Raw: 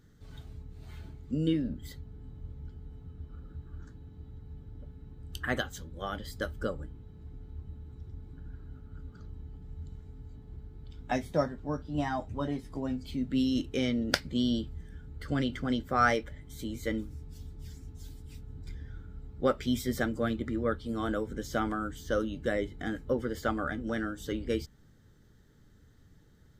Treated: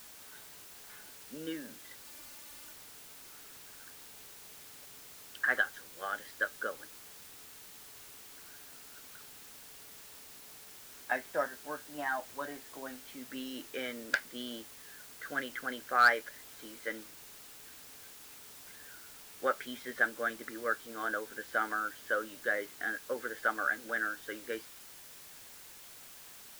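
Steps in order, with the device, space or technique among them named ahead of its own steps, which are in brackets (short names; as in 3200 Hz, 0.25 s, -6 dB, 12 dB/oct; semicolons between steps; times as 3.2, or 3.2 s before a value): drive-through speaker (BPF 530–2800 Hz; bell 1600 Hz +12 dB 0.44 oct; hard clip -13.5 dBFS, distortion -15 dB; white noise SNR 13 dB); 2.04–2.73 comb 3.4 ms, depth 68%; gain -2.5 dB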